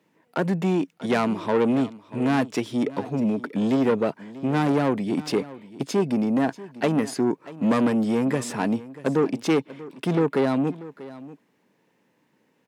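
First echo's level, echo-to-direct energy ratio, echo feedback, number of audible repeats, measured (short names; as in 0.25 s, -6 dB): -17.5 dB, -17.5 dB, no steady repeat, 1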